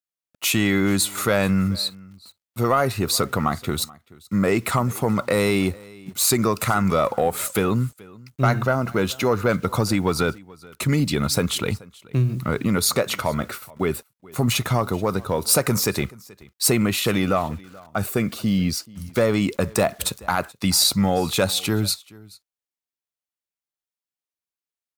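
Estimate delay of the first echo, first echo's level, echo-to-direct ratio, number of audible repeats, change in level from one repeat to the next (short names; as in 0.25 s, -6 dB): 0.43 s, -23.0 dB, -23.0 dB, 1, no steady repeat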